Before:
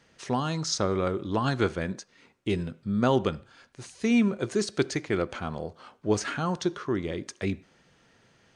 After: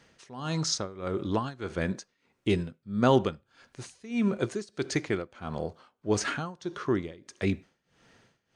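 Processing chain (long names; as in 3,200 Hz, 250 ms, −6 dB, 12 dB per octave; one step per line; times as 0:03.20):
amplitude tremolo 1.6 Hz, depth 91%
level +2 dB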